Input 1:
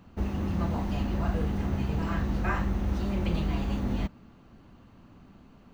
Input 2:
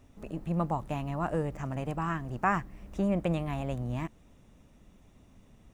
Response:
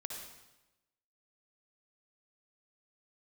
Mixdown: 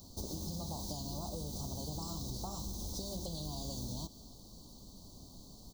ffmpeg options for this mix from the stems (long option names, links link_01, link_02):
-filter_complex "[0:a]aexciter=amount=6.3:drive=10:freq=2500,acompressor=threshold=-27dB:ratio=6,volume=-8dB,asplit=2[link_01][link_02];[link_02]volume=-9.5dB[link_03];[1:a]acompressor=threshold=-39dB:ratio=6,adelay=2.4,volume=1.5dB[link_04];[2:a]atrim=start_sample=2205[link_05];[link_03][link_05]afir=irnorm=-1:irlink=0[link_06];[link_01][link_04][link_06]amix=inputs=3:normalize=0,asuperstop=centerf=2100:order=8:qfactor=0.69,acompressor=threshold=-37dB:ratio=6"